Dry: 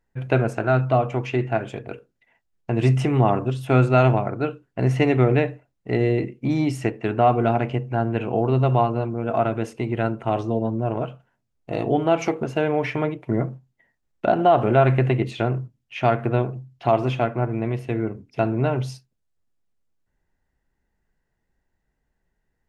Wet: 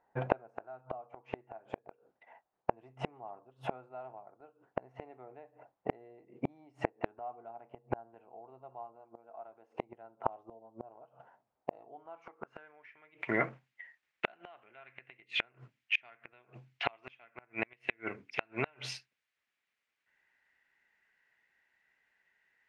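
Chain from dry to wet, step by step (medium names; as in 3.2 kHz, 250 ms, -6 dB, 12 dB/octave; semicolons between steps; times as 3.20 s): band-pass sweep 800 Hz -> 2.2 kHz, 11.84–13.15 s; inverted gate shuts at -30 dBFS, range -37 dB; 8.96–9.83 s: bass shelf 200 Hz -7.5 dB; trim +14 dB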